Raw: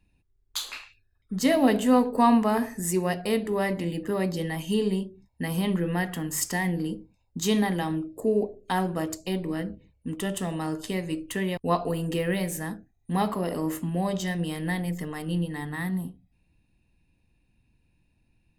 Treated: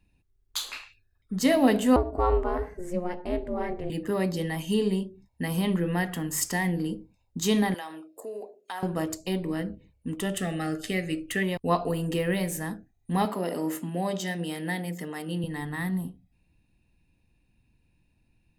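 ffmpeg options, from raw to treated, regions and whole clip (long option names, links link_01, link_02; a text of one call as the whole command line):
ffmpeg -i in.wav -filter_complex "[0:a]asettb=1/sr,asplit=3[link_01][link_02][link_03];[link_01]atrim=end=1.964[link_04];[link_02]atrim=start=1.96:end=3.9,asetpts=PTS-STARTPTS,afade=type=in:duration=0.004:curve=qsin,afade=type=out:start_time=1.936:duration=0.004:curve=qsin,lowpass=frequency=1000:poles=1,aeval=exprs='val(0)*sin(2*PI*180*n/s)':channel_layout=same[link_05];[link_03]atrim=start=3.896[link_06];[link_04][link_05]acrossfade=duration=0.004:curve1=hsin:curve2=qsin[link_07];[link_07][link_06]acrossfade=duration=0.004:curve1=qsin:curve2=hsin,asettb=1/sr,asplit=3[link_08][link_09][link_10];[link_08]atrim=end=7.744[link_11];[link_09]atrim=start=7.74:end=8.83,asetpts=PTS-STARTPTS,afade=type=in:duration=0.004:curve=qsin,afade=type=out:start_time=1.086:duration=0.004:curve=qsin,highpass=640,acompressor=threshold=-37dB:ratio=2:attack=3.2:release=140:knee=1:detection=peak[link_12];[link_10]atrim=start=8.826[link_13];[link_11][link_12]acrossfade=duration=0.004:curve1=hsin:curve2=qsin[link_14];[link_14][link_13]acrossfade=duration=0.004:curve1=qsin:curve2=hsin,asettb=1/sr,asplit=3[link_15][link_16][link_17];[link_15]atrim=end=10.344[link_18];[link_16]atrim=start=10.34:end=11.43,asetpts=PTS-STARTPTS,afade=type=in:duration=0.004:curve=qsin,afade=type=out:start_time=1.086:duration=0.004:curve=qsin,asuperstop=centerf=980:order=8:qfactor=3.3,equalizer=frequency=2000:width=1.6:gain=6.5[link_19];[link_17]atrim=start=11.426[link_20];[link_18][link_19]acrossfade=duration=0.004:curve1=hsin:curve2=qsin[link_21];[link_21][link_20]acrossfade=duration=0.004:curve1=qsin:curve2=hsin,asettb=1/sr,asplit=3[link_22][link_23][link_24];[link_22]atrim=end=13.254[link_25];[link_23]atrim=start=13.25:end=15.44,asetpts=PTS-STARTPTS,afade=type=in:duration=0.004:curve=qsin,afade=type=out:start_time=2.186:duration=0.004:curve=qsin,highpass=200,bandreject=frequency=1100:width=10[link_26];[link_24]atrim=start=15.436[link_27];[link_25][link_26]acrossfade=duration=0.004:curve1=hsin:curve2=qsin[link_28];[link_28][link_27]acrossfade=duration=0.004:curve1=qsin:curve2=hsin" out.wav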